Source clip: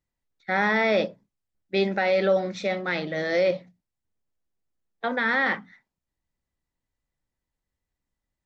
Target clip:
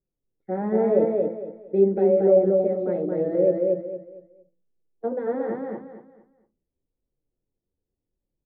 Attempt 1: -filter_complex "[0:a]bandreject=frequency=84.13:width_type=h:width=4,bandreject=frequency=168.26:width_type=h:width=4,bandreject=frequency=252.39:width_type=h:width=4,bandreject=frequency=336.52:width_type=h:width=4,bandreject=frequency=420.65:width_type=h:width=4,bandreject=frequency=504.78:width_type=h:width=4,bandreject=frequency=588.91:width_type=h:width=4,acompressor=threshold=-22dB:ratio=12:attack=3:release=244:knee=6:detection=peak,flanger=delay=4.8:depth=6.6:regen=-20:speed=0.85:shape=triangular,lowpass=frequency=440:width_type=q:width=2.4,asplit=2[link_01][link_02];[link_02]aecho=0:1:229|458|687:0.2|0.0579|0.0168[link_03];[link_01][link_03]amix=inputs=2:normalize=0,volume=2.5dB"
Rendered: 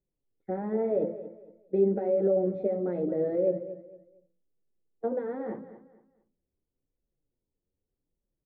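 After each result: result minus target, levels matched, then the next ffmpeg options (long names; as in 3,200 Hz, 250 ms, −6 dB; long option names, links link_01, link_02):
downward compressor: peak gain reduction +8 dB; echo-to-direct −11.5 dB
-filter_complex "[0:a]bandreject=frequency=84.13:width_type=h:width=4,bandreject=frequency=168.26:width_type=h:width=4,bandreject=frequency=252.39:width_type=h:width=4,bandreject=frequency=336.52:width_type=h:width=4,bandreject=frequency=420.65:width_type=h:width=4,bandreject=frequency=504.78:width_type=h:width=4,bandreject=frequency=588.91:width_type=h:width=4,flanger=delay=4.8:depth=6.6:regen=-20:speed=0.85:shape=triangular,lowpass=frequency=440:width_type=q:width=2.4,asplit=2[link_01][link_02];[link_02]aecho=0:1:229|458|687:0.2|0.0579|0.0168[link_03];[link_01][link_03]amix=inputs=2:normalize=0,volume=2.5dB"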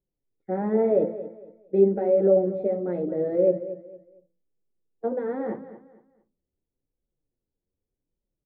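echo-to-direct −11.5 dB
-filter_complex "[0:a]bandreject=frequency=84.13:width_type=h:width=4,bandreject=frequency=168.26:width_type=h:width=4,bandreject=frequency=252.39:width_type=h:width=4,bandreject=frequency=336.52:width_type=h:width=4,bandreject=frequency=420.65:width_type=h:width=4,bandreject=frequency=504.78:width_type=h:width=4,bandreject=frequency=588.91:width_type=h:width=4,flanger=delay=4.8:depth=6.6:regen=-20:speed=0.85:shape=triangular,lowpass=frequency=440:width_type=q:width=2.4,asplit=2[link_01][link_02];[link_02]aecho=0:1:229|458|687|916:0.75|0.217|0.0631|0.0183[link_03];[link_01][link_03]amix=inputs=2:normalize=0,volume=2.5dB"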